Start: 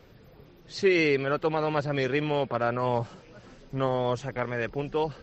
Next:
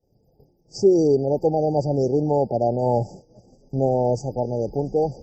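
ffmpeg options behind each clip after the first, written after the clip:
ffmpeg -i in.wav -af "afftfilt=real='re*(1-between(b*sr/4096,890,4600))':imag='im*(1-between(b*sr/4096,890,4600))':win_size=4096:overlap=0.75,agate=range=-33dB:threshold=-42dB:ratio=3:detection=peak,volume=7dB" out.wav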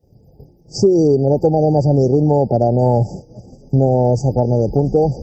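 ffmpeg -i in.wav -af "highpass=42,lowshelf=frequency=200:gain=10,acompressor=threshold=-19dB:ratio=4,volume=8.5dB" out.wav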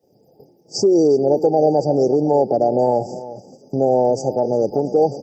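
ffmpeg -i in.wav -filter_complex "[0:a]alimiter=limit=-6.5dB:level=0:latency=1:release=89,highpass=320,asplit=2[link_01][link_02];[link_02]adelay=355.7,volume=-15dB,highshelf=frequency=4000:gain=-8[link_03];[link_01][link_03]amix=inputs=2:normalize=0,volume=2dB" out.wav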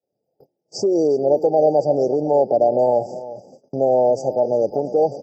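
ffmpeg -i in.wav -af "agate=range=-19dB:threshold=-44dB:ratio=16:detection=peak,equalizer=frequency=610:width_type=o:width=0.72:gain=8.5,volume=-6dB" out.wav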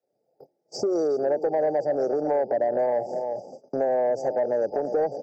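ffmpeg -i in.wav -filter_complex "[0:a]acrossover=split=170|670[link_01][link_02][link_03];[link_01]acompressor=threshold=-47dB:ratio=4[link_04];[link_02]acompressor=threshold=-26dB:ratio=4[link_05];[link_03]acompressor=threshold=-35dB:ratio=4[link_06];[link_04][link_05][link_06]amix=inputs=3:normalize=0,asplit=2[link_07][link_08];[link_08]highpass=frequency=720:poles=1,volume=12dB,asoftclip=type=tanh:threshold=-14dB[link_09];[link_07][link_09]amix=inputs=2:normalize=0,lowpass=frequency=2600:poles=1,volume=-6dB,equalizer=frequency=3000:width_type=o:width=0.38:gain=-14" out.wav

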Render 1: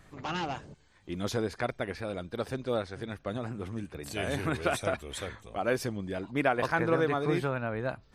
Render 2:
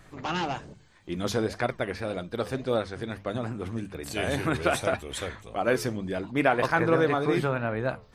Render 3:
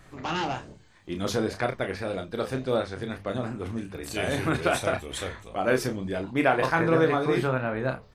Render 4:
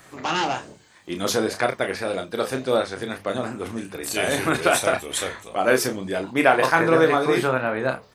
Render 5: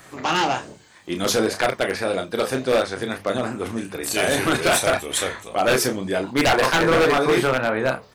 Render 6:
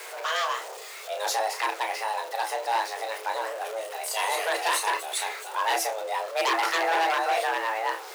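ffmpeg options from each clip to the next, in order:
ffmpeg -i in.wav -af "flanger=delay=5.5:depth=7.4:regen=-81:speed=1.8:shape=sinusoidal,bandreject=frequency=50:width_type=h:width=6,bandreject=frequency=100:width_type=h:width=6,bandreject=frequency=150:width_type=h:width=6,bandreject=frequency=200:width_type=h:width=6,volume=8.5dB" out.wav
ffmpeg -i in.wav -filter_complex "[0:a]asplit=2[link_01][link_02];[link_02]adelay=31,volume=-7dB[link_03];[link_01][link_03]amix=inputs=2:normalize=0" out.wav
ffmpeg -i in.wav -filter_complex "[0:a]highpass=frequency=320:poles=1,acrossover=split=6500[link_01][link_02];[link_02]acontrast=51[link_03];[link_01][link_03]amix=inputs=2:normalize=0,volume=6.5dB" out.wav
ffmpeg -i in.wav -af "aeval=exprs='0.2*(abs(mod(val(0)/0.2+3,4)-2)-1)':channel_layout=same,volume=3dB" out.wav
ffmpeg -i in.wav -af "aeval=exprs='val(0)+0.5*0.0398*sgn(val(0))':channel_layout=same,afreqshift=330,acrusher=bits=9:mix=0:aa=0.000001,volume=-8dB" out.wav

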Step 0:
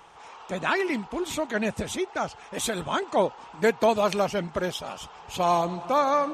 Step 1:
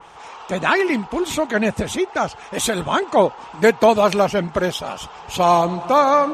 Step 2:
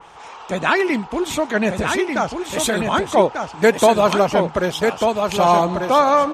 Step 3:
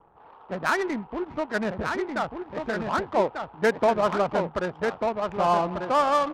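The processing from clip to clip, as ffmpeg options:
ffmpeg -i in.wav -af "adynamicequalizer=threshold=0.00891:dfrequency=2800:dqfactor=0.7:tfrequency=2800:tqfactor=0.7:attack=5:release=100:ratio=0.375:range=2:mode=cutabove:tftype=highshelf,volume=8dB" out.wav
ffmpeg -i in.wav -af "aecho=1:1:1192:0.562" out.wav
ffmpeg -i in.wav -af "lowpass=frequency=1700:width_type=q:width=1.5,adynamicsmooth=sensitivity=1:basefreq=520,volume=-9dB" out.wav

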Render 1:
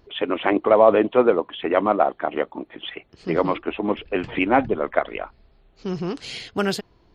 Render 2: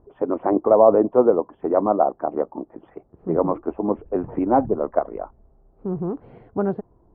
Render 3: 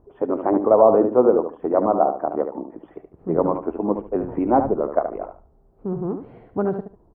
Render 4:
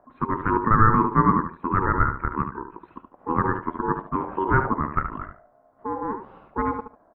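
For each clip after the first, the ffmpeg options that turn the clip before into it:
ffmpeg -i in.wav -af "lowpass=frequency=1000:width=0.5412,lowpass=frequency=1000:width=1.3066,volume=1dB" out.wav
ffmpeg -i in.wav -af "aecho=1:1:73|146|219:0.398|0.0916|0.0211" out.wav
ffmpeg -i in.wav -af "aeval=exprs='val(0)*sin(2*PI*660*n/s)':channel_layout=same" out.wav

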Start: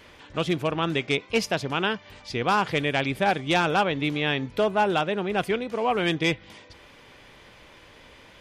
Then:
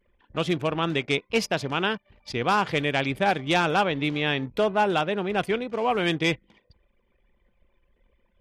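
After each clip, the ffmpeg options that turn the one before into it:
ffmpeg -i in.wav -af "bandreject=frequency=50:width_type=h:width=6,bandreject=frequency=100:width_type=h:width=6,anlmdn=0.251" out.wav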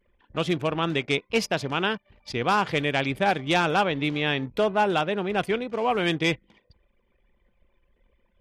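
ffmpeg -i in.wav -af anull out.wav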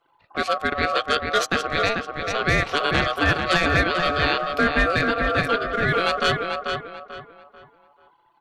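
ffmpeg -i in.wav -filter_complex "[0:a]afreqshift=44,aeval=exprs='val(0)*sin(2*PI*930*n/s)':channel_layout=same,asplit=2[link_01][link_02];[link_02]adelay=440,lowpass=frequency=2900:poles=1,volume=-4dB,asplit=2[link_03][link_04];[link_04]adelay=440,lowpass=frequency=2900:poles=1,volume=0.33,asplit=2[link_05][link_06];[link_06]adelay=440,lowpass=frequency=2900:poles=1,volume=0.33,asplit=2[link_07][link_08];[link_08]adelay=440,lowpass=frequency=2900:poles=1,volume=0.33[link_09];[link_01][link_03][link_05][link_07][link_09]amix=inputs=5:normalize=0,volume=5dB" out.wav

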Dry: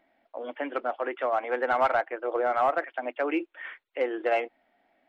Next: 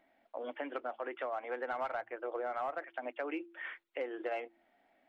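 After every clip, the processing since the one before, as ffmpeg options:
ffmpeg -i in.wav -af "acompressor=threshold=-35dB:ratio=3,bandreject=frequency=113.2:width_type=h:width=4,bandreject=frequency=226.4:width_type=h:width=4,bandreject=frequency=339.6:width_type=h:width=4,volume=-2.5dB" out.wav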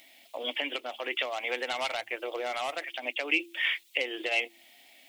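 ffmpeg -i in.wav -af "alimiter=level_in=6dB:limit=-24dB:level=0:latency=1:release=321,volume=-6dB,aexciter=amount=9:drive=8.4:freq=2300,volume=5dB" out.wav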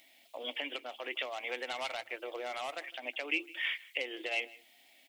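ffmpeg -i in.wav -af "aecho=1:1:158:0.0891,volume=-6dB" out.wav

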